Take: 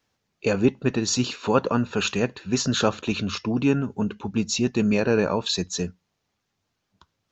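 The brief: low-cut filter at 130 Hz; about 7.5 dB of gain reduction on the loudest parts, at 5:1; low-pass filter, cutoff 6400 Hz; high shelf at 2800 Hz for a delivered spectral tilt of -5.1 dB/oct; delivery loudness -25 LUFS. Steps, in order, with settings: HPF 130 Hz; LPF 6400 Hz; high shelf 2800 Hz -6 dB; compressor 5:1, threshold -22 dBFS; gain +4 dB

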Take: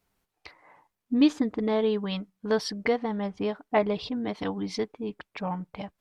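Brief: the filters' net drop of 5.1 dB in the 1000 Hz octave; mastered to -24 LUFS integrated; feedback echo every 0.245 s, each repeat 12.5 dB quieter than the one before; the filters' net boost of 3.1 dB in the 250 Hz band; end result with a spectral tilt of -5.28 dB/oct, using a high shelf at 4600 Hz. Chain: bell 250 Hz +4 dB; bell 1000 Hz -7.5 dB; high shelf 4600 Hz +3 dB; feedback echo 0.245 s, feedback 24%, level -12.5 dB; gain +3 dB

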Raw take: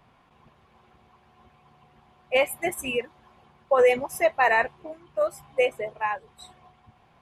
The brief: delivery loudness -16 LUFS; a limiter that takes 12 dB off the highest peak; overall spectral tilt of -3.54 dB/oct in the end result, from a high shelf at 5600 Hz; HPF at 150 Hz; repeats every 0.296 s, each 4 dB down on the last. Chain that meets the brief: HPF 150 Hz; high shelf 5600 Hz -5.5 dB; limiter -22 dBFS; feedback echo 0.296 s, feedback 63%, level -4 dB; gain +16 dB

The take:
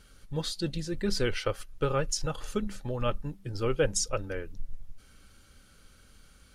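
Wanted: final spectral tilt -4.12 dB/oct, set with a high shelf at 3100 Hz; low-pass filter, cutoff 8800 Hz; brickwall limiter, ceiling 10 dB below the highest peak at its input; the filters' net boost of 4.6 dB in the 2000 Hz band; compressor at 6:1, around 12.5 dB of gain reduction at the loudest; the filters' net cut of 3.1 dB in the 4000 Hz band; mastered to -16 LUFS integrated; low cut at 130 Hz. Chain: HPF 130 Hz; LPF 8800 Hz; bell 2000 Hz +7.5 dB; high shelf 3100 Hz +3 dB; bell 4000 Hz -9 dB; compressor 6:1, threshold -34 dBFS; gain +26.5 dB; limiter -4.5 dBFS

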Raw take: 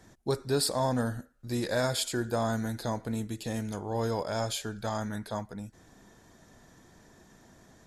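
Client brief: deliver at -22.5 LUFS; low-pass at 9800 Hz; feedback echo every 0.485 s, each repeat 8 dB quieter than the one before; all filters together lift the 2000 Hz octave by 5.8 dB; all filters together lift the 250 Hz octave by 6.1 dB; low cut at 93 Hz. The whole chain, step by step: HPF 93 Hz; LPF 9800 Hz; bell 250 Hz +7 dB; bell 2000 Hz +8 dB; feedback echo 0.485 s, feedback 40%, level -8 dB; gain +5.5 dB

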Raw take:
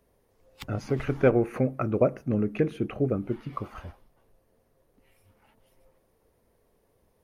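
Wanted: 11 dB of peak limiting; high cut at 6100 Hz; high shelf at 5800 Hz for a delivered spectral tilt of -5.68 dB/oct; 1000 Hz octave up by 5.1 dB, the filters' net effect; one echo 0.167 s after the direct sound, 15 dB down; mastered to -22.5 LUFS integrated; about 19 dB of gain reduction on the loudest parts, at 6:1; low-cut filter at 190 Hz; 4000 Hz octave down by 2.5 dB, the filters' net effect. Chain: HPF 190 Hz; LPF 6100 Hz; bell 1000 Hz +7.5 dB; bell 4000 Hz -5 dB; high shelf 5800 Hz +4.5 dB; compressor 6:1, threshold -36 dBFS; limiter -31.5 dBFS; echo 0.167 s -15 dB; gain +21.5 dB

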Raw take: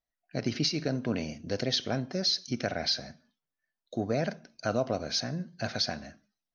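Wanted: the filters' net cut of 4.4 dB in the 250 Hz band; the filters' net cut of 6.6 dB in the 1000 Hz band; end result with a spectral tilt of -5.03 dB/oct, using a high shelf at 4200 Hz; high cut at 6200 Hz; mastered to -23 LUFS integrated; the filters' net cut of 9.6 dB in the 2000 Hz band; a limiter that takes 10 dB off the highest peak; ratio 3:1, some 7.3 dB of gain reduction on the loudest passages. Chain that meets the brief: LPF 6200 Hz; bell 250 Hz -5 dB; bell 1000 Hz -9 dB; bell 2000 Hz -8.5 dB; high shelf 4200 Hz -4 dB; compressor 3:1, threshold -38 dBFS; gain +23 dB; limiter -12 dBFS

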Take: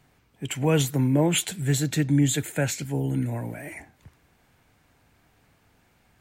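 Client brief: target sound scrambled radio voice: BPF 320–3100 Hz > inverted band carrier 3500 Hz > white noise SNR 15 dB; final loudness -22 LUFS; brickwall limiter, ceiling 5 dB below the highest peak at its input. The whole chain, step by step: limiter -15.5 dBFS; BPF 320–3100 Hz; inverted band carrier 3500 Hz; white noise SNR 15 dB; gain +7.5 dB

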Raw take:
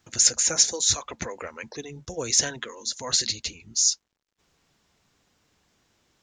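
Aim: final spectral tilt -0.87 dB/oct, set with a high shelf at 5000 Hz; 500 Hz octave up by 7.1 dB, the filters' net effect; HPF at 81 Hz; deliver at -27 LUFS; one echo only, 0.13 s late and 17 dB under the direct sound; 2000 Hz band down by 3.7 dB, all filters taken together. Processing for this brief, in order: HPF 81 Hz; bell 500 Hz +8 dB; bell 2000 Hz -5 dB; high shelf 5000 Hz -3 dB; echo 0.13 s -17 dB; gain -1.5 dB

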